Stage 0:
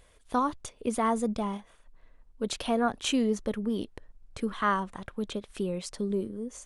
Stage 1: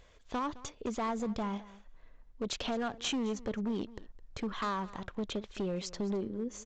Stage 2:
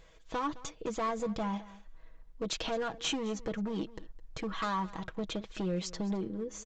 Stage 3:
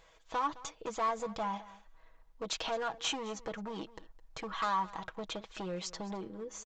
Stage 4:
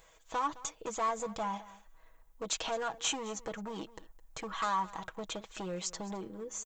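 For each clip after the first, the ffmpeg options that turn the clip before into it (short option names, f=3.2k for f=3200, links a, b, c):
-af "acompressor=threshold=-28dB:ratio=6,aresample=16000,asoftclip=type=hard:threshold=-29.5dB,aresample=44100,aecho=1:1:213:0.112"
-af "aecho=1:1:6.2:0.64"
-af "firequalizer=gain_entry='entry(220,0);entry(840,12);entry(1700,8)':delay=0.05:min_phase=1,volume=-8.5dB"
-af "aexciter=amount=2.5:drive=6.7:freq=6.6k"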